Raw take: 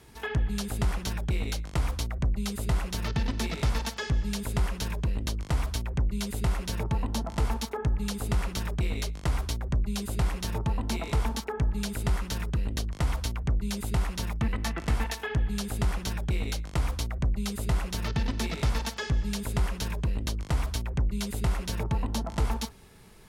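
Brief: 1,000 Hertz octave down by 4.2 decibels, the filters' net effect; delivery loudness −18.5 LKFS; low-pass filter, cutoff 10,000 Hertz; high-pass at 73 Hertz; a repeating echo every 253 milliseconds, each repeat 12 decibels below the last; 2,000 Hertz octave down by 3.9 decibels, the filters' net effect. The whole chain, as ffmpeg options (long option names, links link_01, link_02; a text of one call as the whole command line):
ffmpeg -i in.wav -af "highpass=73,lowpass=10000,equalizer=frequency=1000:width_type=o:gain=-4.5,equalizer=frequency=2000:width_type=o:gain=-3.5,aecho=1:1:253|506|759:0.251|0.0628|0.0157,volume=15dB" out.wav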